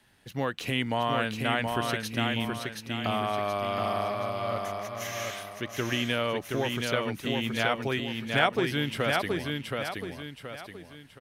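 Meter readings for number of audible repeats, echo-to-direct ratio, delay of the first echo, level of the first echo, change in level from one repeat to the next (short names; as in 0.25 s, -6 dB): 3, -3.0 dB, 0.724 s, -3.5 dB, -8.0 dB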